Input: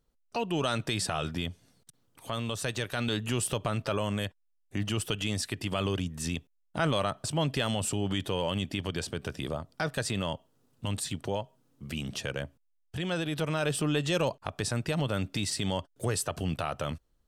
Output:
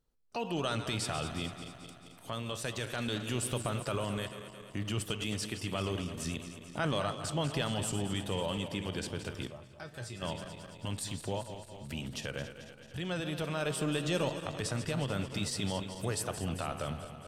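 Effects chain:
feedback delay that plays each chunk backwards 110 ms, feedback 78%, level −10.5 dB
0:09.47–0:10.22: tuned comb filter 120 Hz, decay 0.2 s, harmonics odd, mix 80%
flanger 1.4 Hz, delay 7.6 ms, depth 9 ms, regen +89%

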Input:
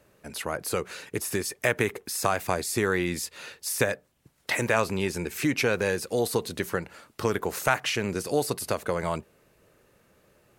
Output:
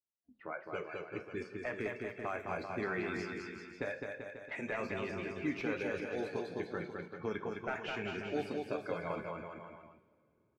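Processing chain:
spectral magnitudes quantised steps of 15 dB
notch filter 480 Hz, Q 13
noise reduction from a noise print of the clip's start 24 dB
meter weighting curve D
de-essing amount 90%
low-pass that shuts in the quiet parts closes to 320 Hz, open at −24 dBFS
noise gate −59 dBFS, range −23 dB
parametric band 12,000 Hz −13.5 dB 3 octaves
reversed playback
upward compression, threshold −32 dBFS
reversed playback
flanger 0.97 Hz, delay 8.3 ms, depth 4.3 ms, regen −68%
bouncing-ball delay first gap 210 ms, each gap 0.85×, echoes 5
coupled-rooms reverb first 0.47 s, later 2.8 s, from −17 dB, DRR 10.5 dB
level −5 dB

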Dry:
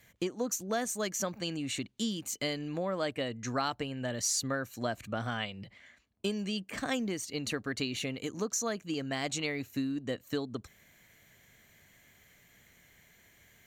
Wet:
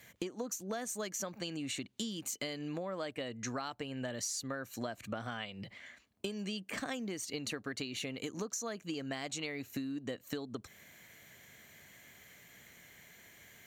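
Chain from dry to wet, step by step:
high-pass filter 140 Hz 6 dB per octave
downward compressor 6 to 1, threshold −41 dBFS, peak gain reduction 13.5 dB
level +4.5 dB

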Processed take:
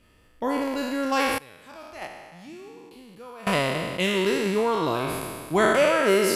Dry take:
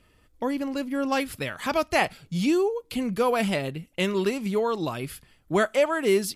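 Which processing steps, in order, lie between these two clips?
peak hold with a decay on every bin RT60 1.90 s
0:01.38–0:03.47: noise gate −13 dBFS, range −21 dB
level −1 dB

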